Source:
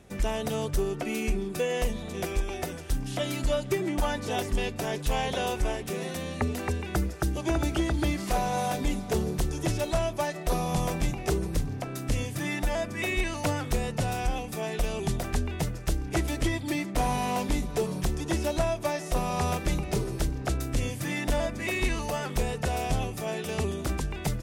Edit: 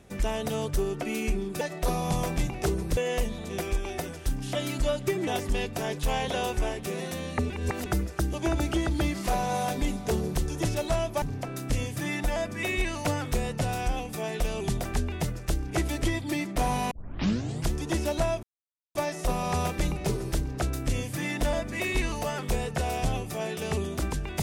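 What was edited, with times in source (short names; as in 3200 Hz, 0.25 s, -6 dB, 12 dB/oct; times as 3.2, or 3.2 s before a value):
3.91–4.3 cut
6.53–6.89 reverse
10.25–11.61 move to 1.61
17.3 tape start 0.82 s
18.82 insert silence 0.52 s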